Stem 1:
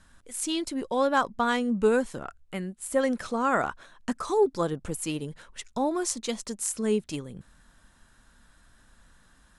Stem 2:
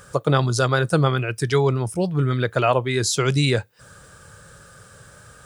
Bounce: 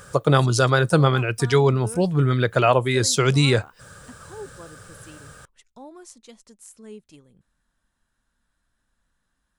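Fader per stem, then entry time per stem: −15.5, +1.5 decibels; 0.00, 0.00 seconds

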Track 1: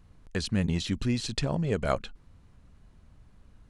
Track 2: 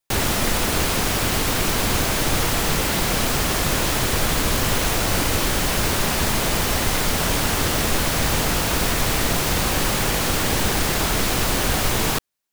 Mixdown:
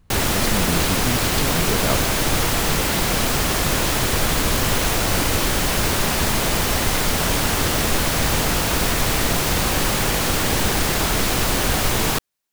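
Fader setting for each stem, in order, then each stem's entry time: +2.0, +1.0 decibels; 0.00, 0.00 seconds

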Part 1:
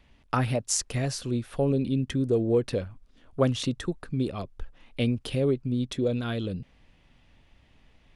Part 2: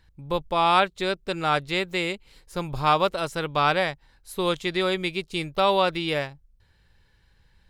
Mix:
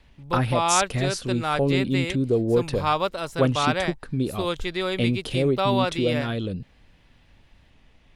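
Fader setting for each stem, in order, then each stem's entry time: +2.5, −2.5 decibels; 0.00, 0.00 seconds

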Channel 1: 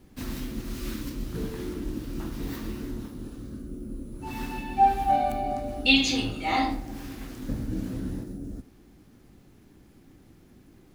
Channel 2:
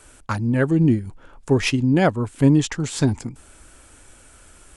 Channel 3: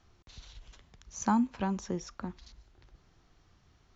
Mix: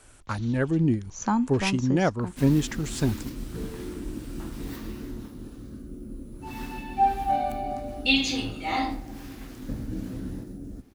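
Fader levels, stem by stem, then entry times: −2.0, −6.0, +2.5 decibels; 2.20, 0.00, 0.00 seconds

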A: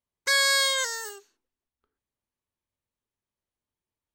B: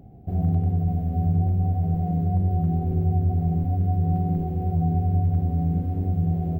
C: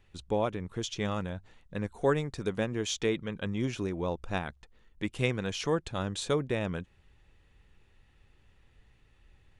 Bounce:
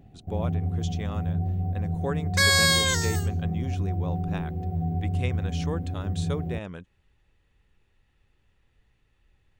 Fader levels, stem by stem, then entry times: +1.5, −5.5, −4.5 decibels; 2.10, 0.00, 0.00 seconds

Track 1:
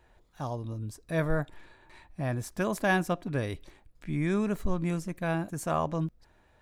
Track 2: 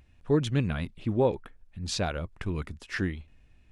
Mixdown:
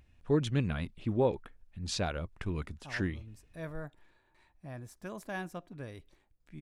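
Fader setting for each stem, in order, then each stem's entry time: −13.0, −3.5 decibels; 2.45, 0.00 seconds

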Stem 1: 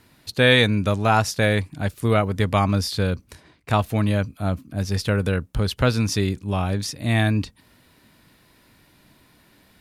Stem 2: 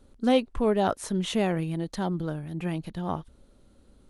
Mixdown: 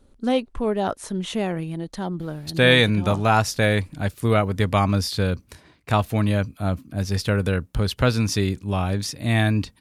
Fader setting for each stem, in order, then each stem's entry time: 0.0, +0.5 decibels; 2.20, 0.00 seconds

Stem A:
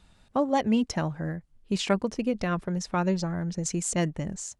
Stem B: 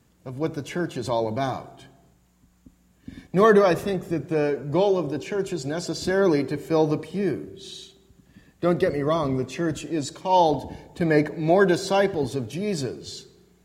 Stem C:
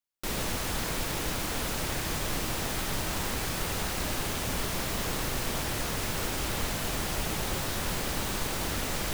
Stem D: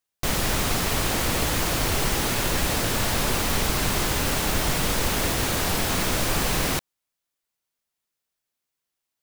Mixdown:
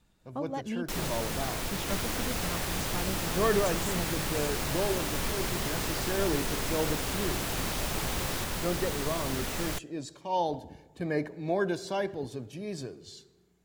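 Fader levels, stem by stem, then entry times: −11.5, −10.5, −2.5, −12.5 decibels; 0.00, 0.00, 0.65, 1.65 seconds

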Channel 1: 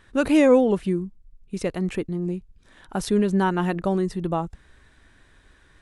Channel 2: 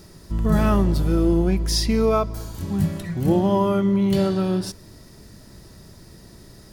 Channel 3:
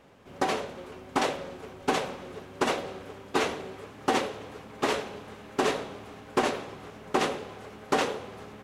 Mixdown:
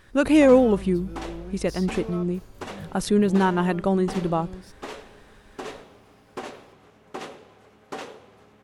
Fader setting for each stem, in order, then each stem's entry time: +1.0, −18.5, −10.0 decibels; 0.00, 0.00, 0.00 seconds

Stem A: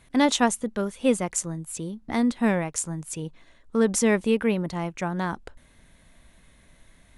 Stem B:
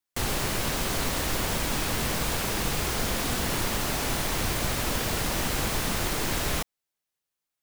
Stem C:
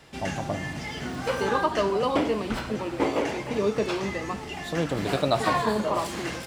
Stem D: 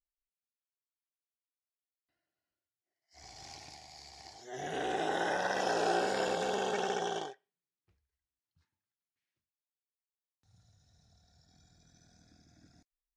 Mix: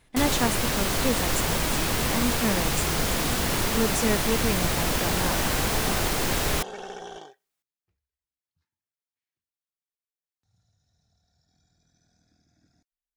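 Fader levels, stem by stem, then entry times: −5.0, +2.5, −17.5, −4.5 decibels; 0.00, 0.00, 0.00, 0.00 seconds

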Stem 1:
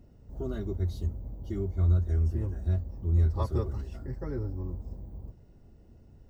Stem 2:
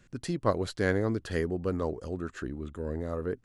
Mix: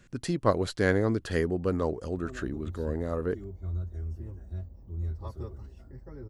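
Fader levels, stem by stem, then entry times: −9.5, +2.5 decibels; 1.85, 0.00 seconds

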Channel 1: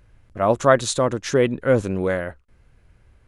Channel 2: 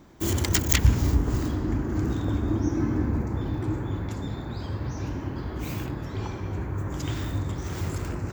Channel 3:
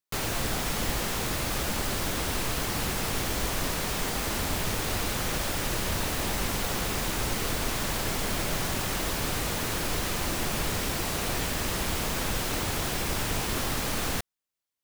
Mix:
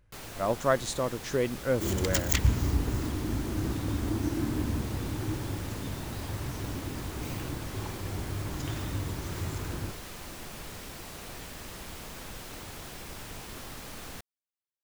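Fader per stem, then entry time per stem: −10.0, −5.0, −13.0 decibels; 0.00, 1.60, 0.00 seconds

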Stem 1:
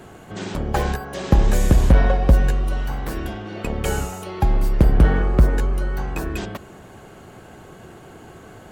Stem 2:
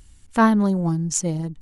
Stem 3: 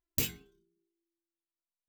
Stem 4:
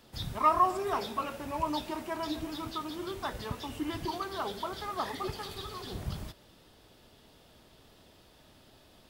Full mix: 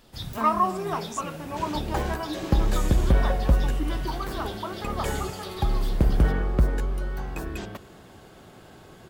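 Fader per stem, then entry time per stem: −6.5, −15.5, −16.0, +2.0 decibels; 1.20, 0.00, 0.15, 0.00 seconds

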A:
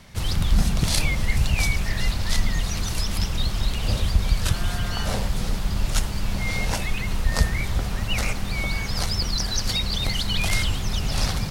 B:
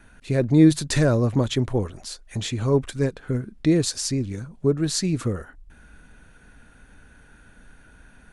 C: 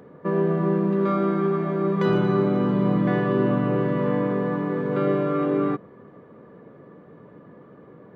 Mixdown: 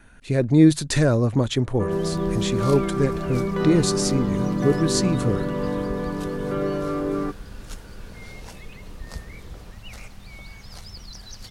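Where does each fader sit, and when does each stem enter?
−15.5, +0.5, −3.0 decibels; 1.75, 0.00, 1.55 seconds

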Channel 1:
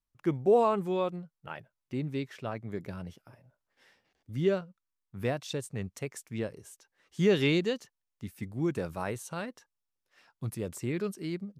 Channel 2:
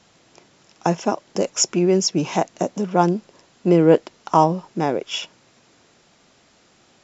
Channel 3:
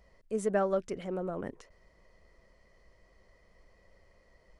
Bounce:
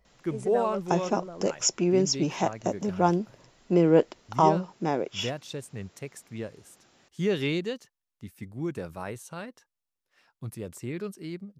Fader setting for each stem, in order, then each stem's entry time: −2.0, −6.0, −5.0 decibels; 0.00, 0.05, 0.00 seconds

